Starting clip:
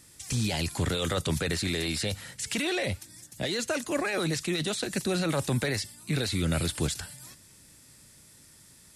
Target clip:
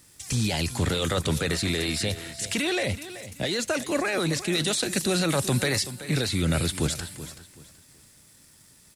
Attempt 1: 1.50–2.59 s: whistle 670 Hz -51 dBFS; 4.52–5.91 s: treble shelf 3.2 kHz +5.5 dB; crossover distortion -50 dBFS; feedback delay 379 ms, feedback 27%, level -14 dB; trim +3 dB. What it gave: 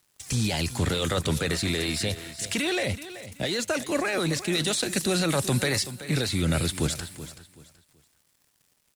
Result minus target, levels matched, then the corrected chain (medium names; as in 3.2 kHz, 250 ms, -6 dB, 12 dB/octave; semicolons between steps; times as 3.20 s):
crossover distortion: distortion +11 dB
1.50–2.59 s: whistle 670 Hz -51 dBFS; 4.52–5.91 s: treble shelf 3.2 kHz +5.5 dB; crossover distortion -62 dBFS; feedback delay 379 ms, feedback 27%, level -14 dB; trim +3 dB